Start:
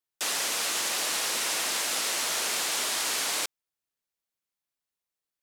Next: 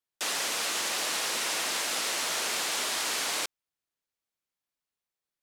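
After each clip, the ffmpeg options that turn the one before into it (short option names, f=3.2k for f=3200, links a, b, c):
-af "highshelf=f=6.9k:g=-5"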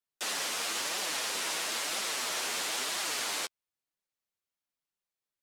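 -af "flanger=delay=4.8:depth=7.7:regen=-4:speed=1:shape=triangular"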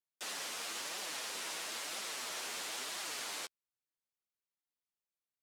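-af "acrusher=bits=7:mode=log:mix=0:aa=0.000001,volume=-8dB"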